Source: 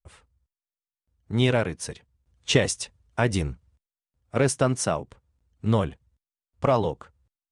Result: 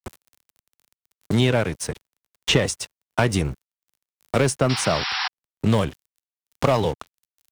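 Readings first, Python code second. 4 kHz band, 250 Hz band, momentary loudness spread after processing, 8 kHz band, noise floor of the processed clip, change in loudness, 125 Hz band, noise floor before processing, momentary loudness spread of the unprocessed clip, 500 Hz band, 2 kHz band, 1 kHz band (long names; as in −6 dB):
+6.0 dB, +3.0 dB, 11 LU, +2.0 dB, below −85 dBFS, +2.5 dB, +2.5 dB, below −85 dBFS, 11 LU, +2.0 dB, +4.5 dB, +3.5 dB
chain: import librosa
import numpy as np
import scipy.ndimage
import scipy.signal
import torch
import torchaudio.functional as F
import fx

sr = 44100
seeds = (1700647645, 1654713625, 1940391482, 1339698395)

y = fx.dmg_crackle(x, sr, seeds[0], per_s=190.0, level_db=-48.0)
y = np.sign(y) * np.maximum(np.abs(y) - 10.0 ** (-43.5 / 20.0), 0.0)
y = fx.spec_paint(y, sr, seeds[1], shape='noise', start_s=4.69, length_s=0.59, low_hz=730.0, high_hz=5700.0, level_db=-33.0)
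y = 10.0 ** (-14.5 / 20.0) * np.tanh(y / 10.0 ** (-14.5 / 20.0))
y = fx.band_squash(y, sr, depth_pct=70)
y = F.gain(torch.from_numpy(y), 5.5).numpy()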